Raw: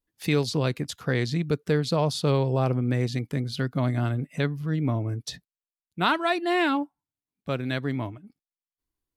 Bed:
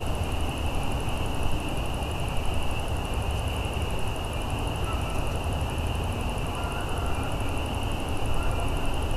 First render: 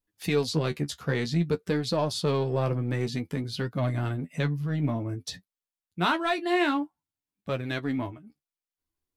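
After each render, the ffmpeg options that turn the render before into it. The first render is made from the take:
-filter_complex "[0:a]asplit=2[s0][s1];[s1]asoftclip=type=hard:threshold=0.0631,volume=0.398[s2];[s0][s2]amix=inputs=2:normalize=0,flanger=delay=9.2:depth=5.2:regen=31:speed=0.53:shape=triangular"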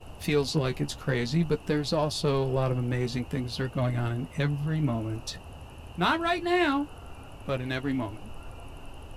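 -filter_complex "[1:a]volume=0.158[s0];[0:a][s0]amix=inputs=2:normalize=0"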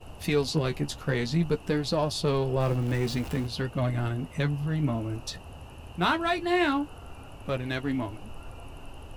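-filter_complex "[0:a]asettb=1/sr,asplit=3[s0][s1][s2];[s0]atrim=end=2.604[s3];[s1]atrim=start=2.6:end=3.47,asetpts=PTS-STARTPTS,afade=t=in:d=0.004:c=qsin,afade=t=out:st=0.866:d=0.004:c=qsin,aeval=exprs='val(0)+0.5*0.015*sgn(val(0))':c=same[s4];[s2]atrim=start=3.466[s5];[s3][s4]acrossfade=d=0.004:c1=hsin:c2=qsin[s6];[s6][s5]acrossfade=d=0.004:c1=qsin:c2=hsin"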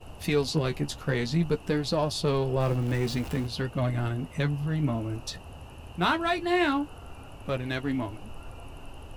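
-af anull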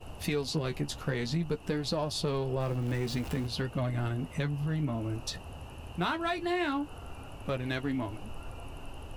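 -af "acompressor=threshold=0.0355:ratio=3"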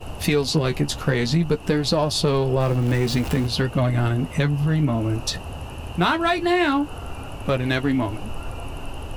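-af "volume=3.55"

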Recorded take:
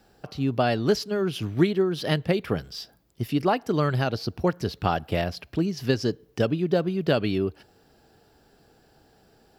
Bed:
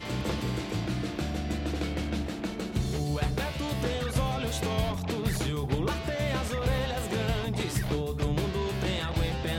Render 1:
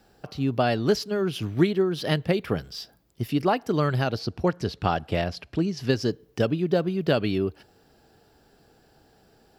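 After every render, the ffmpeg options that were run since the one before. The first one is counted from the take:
-filter_complex "[0:a]asettb=1/sr,asplit=3[s0][s1][s2];[s0]atrim=end=4.194[s3];[s1]atrim=start=4.19:end=5.89,asetpts=PTS-STARTPTS,afade=t=in:d=0.004:c=qsin,afade=t=out:st=1.696:d=0.004:c=qsin,lowpass=9300[s4];[s2]atrim=start=5.886[s5];[s3][s4]acrossfade=d=0.004:c1=hsin:c2=qsin[s6];[s6][s5]acrossfade=d=0.004:c1=qsin:c2=hsin"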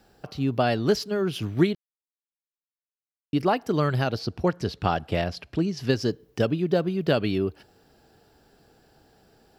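-filter_complex "[0:a]asplit=3[s0][s1][s2];[s0]atrim=end=1.75,asetpts=PTS-STARTPTS,afade=t=out:st=1.746:d=0.004:c=hsin[s3];[s1]atrim=start=1.75:end=3.33,asetpts=PTS-STARTPTS,volume=0[s4];[s2]atrim=start=3.33,asetpts=PTS-STARTPTS,afade=t=in:d=0.004:c=hsin[s5];[s3][s4][s5]concat=n=3:v=0:a=1"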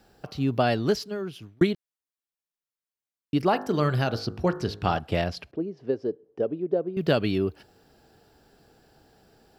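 -filter_complex "[0:a]asplit=3[s0][s1][s2];[s0]afade=t=out:st=3.52:d=0.02[s3];[s1]bandreject=f=51.36:t=h:w=4,bandreject=f=102.72:t=h:w=4,bandreject=f=154.08:t=h:w=4,bandreject=f=205.44:t=h:w=4,bandreject=f=256.8:t=h:w=4,bandreject=f=308.16:t=h:w=4,bandreject=f=359.52:t=h:w=4,bandreject=f=410.88:t=h:w=4,bandreject=f=462.24:t=h:w=4,bandreject=f=513.6:t=h:w=4,bandreject=f=564.96:t=h:w=4,bandreject=f=616.32:t=h:w=4,bandreject=f=667.68:t=h:w=4,bandreject=f=719.04:t=h:w=4,bandreject=f=770.4:t=h:w=4,bandreject=f=821.76:t=h:w=4,bandreject=f=873.12:t=h:w=4,bandreject=f=924.48:t=h:w=4,bandreject=f=975.84:t=h:w=4,bandreject=f=1027.2:t=h:w=4,bandreject=f=1078.56:t=h:w=4,bandreject=f=1129.92:t=h:w=4,bandreject=f=1181.28:t=h:w=4,bandreject=f=1232.64:t=h:w=4,bandreject=f=1284:t=h:w=4,bandreject=f=1335.36:t=h:w=4,bandreject=f=1386.72:t=h:w=4,bandreject=f=1438.08:t=h:w=4,bandreject=f=1489.44:t=h:w=4,bandreject=f=1540.8:t=h:w=4,bandreject=f=1592.16:t=h:w=4,bandreject=f=1643.52:t=h:w=4,bandreject=f=1694.88:t=h:w=4,bandreject=f=1746.24:t=h:w=4,bandreject=f=1797.6:t=h:w=4,bandreject=f=1848.96:t=h:w=4,afade=t=in:st=3.52:d=0.02,afade=t=out:st=4.98:d=0.02[s4];[s2]afade=t=in:st=4.98:d=0.02[s5];[s3][s4][s5]amix=inputs=3:normalize=0,asettb=1/sr,asplit=3[s6][s7][s8];[s6]atrim=end=5.514[s9];[s7]atrim=start=5.51:end=6.97,asetpts=PTS-STARTPTS,afade=t=in:d=0.004:c=qsin,afade=t=out:st=1.456:d=0.004:c=qsin,bandpass=f=450:t=q:w=1.8[s10];[s8]atrim=start=6.966[s11];[s9][s10]acrossfade=d=0.004:c1=hsin:c2=qsin[s12];[s12][s11]acrossfade=d=0.004:c1=qsin:c2=hsin,asplit=2[s13][s14];[s13]atrim=end=1.61,asetpts=PTS-STARTPTS,afade=t=out:st=0.73:d=0.88[s15];[s14]atrim=start=1.61,asetpts=PTS-STARTPTS,afade=t=in:d=0.004:c=hsin[s16];[s15][s16]concat=n=2:v=0:a=1"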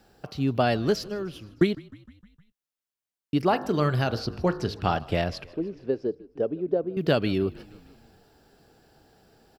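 -filter_complex "[0:a]asplit=6[s0][s1][s2][s3][s4][s5];[s1]adelay=154,afreqshift=-39,volume=0.0794[s6];[s2]adelay=308,afreqshift=-78,volume=0.0501[s7];[s3]adelay=462,afreqshift=-117,volume=0.0316[s8];[s4]adelay=616,afreqshift=-156,volume=0.02[s9];[s5]adelay=770,afreqshift=-195,volume=0.0124[s10];[s0][s6][s7][s8][s9][s10]amix=inputs=6:normalize=0"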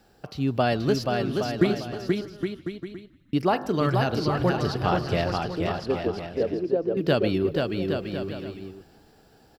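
-af "aecho=1:1:480|816|1051|1216|1331:0.631|0.398|0.251|0.158|0.1"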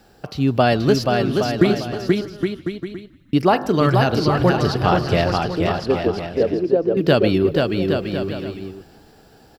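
-af "volume=2.24,alimiter=limit=0.708:level=0:latency=1"

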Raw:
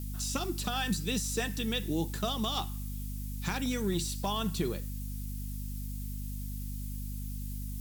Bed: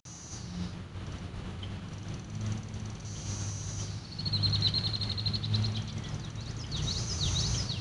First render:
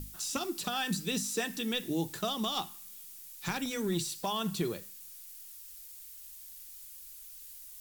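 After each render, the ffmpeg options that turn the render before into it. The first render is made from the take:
-af "bandreject=f=50:t=h:w=6,bandreject=f=100:t=h:w=6,bandreject=f=150:t=h:w=6,bandreject=f=200:t=h:w=6,bandreject=f=250:t=h:w=6"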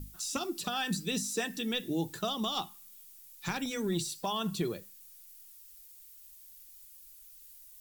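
-af "afftdn=nr=7:nf=-49"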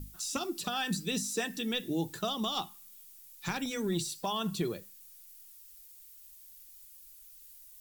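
-af anull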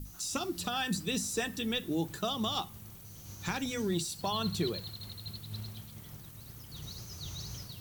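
-filter_complex "[1:a]volume=0.251[s0];[0:a][s0]amix=inputs=2:normalize=0"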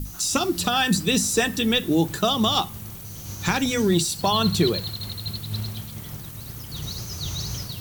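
-af "volume=3.98"

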